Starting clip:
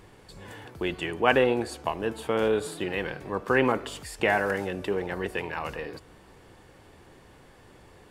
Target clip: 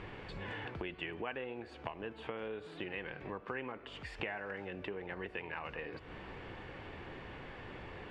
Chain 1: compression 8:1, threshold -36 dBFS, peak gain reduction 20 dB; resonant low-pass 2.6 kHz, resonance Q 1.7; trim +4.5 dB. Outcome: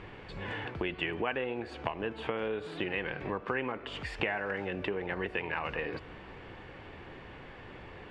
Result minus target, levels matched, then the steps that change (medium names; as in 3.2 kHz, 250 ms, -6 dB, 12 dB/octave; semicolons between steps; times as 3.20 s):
compression: peak gain reduction -8 dB
change: compression 8:1, threshold -45 dBFS, peak gain reduction 28 dB